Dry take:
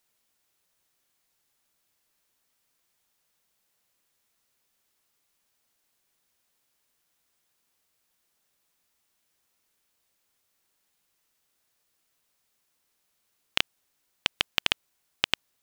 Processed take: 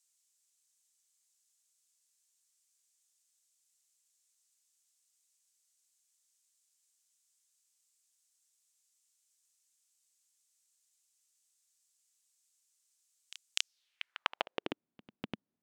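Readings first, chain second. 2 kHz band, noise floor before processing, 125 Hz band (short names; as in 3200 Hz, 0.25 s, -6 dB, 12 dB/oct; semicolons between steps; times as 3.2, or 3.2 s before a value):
-11.0 dB, -75 dBFS, n/a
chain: reverse echo 0.248 s -17 dB; band-pass sweep 7400 Hz -> 220 Hz, 13.58–14.83; gain +6 dB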